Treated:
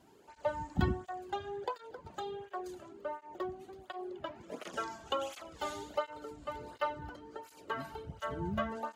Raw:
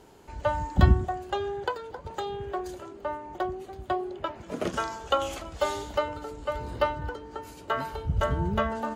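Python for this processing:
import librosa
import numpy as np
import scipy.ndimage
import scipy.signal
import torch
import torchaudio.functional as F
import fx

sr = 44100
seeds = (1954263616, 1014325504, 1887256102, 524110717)

y = fx.flanger_cancel(x, sr, hz=1.4, depth_ms=2.4)
y = y * librosa.db_to_amplitude(-5.5)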